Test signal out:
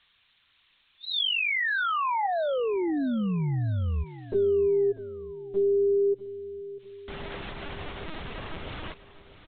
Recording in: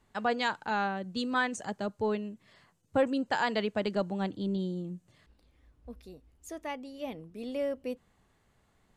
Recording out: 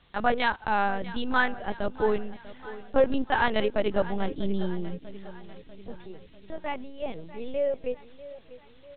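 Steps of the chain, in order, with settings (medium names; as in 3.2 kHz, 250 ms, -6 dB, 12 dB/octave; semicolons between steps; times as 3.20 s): added noise violet -49 dBFS; LPC vocoder at 8 kHz pitch kept; feedback delay 644 ms, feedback 54%, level -16.5 dB; trim +5.5 dB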